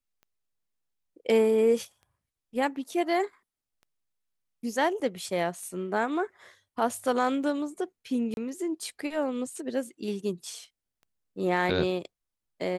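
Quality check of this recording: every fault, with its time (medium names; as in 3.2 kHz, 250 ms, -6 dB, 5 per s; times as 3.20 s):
tick 33 1/3 rpm -39 dBFS
5.00–5.01 s: dropout 5.4 ms
8.34–8.37 s: dropout 31 ms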